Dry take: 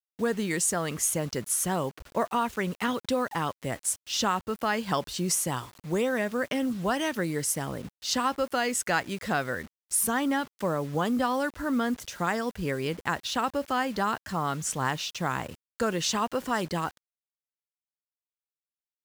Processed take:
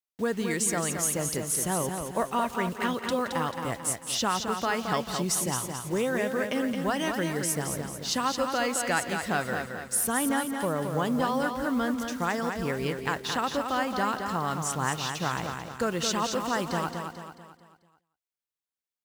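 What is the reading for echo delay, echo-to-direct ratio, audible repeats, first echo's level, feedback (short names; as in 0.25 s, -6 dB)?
0.172 s, -4.5 dB, 8, -16.5 dB, no steady repeat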